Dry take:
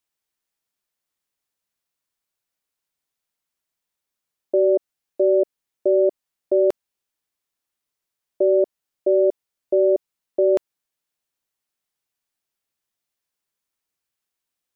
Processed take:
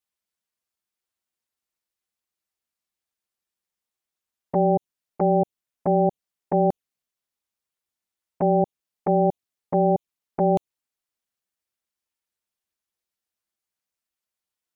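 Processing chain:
flanger swept by the level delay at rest 7.1 ms, full sweep at −17 dBFS
ring modulation 200 Hz
level +1.5 dB

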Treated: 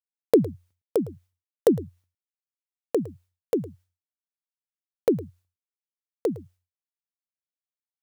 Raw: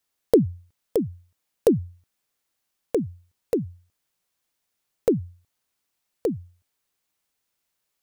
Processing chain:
downward expander −45 dBFS
high-pass filter 160 Hz 6 dB per octave
single-tap delay 109 ms −18.5 dB

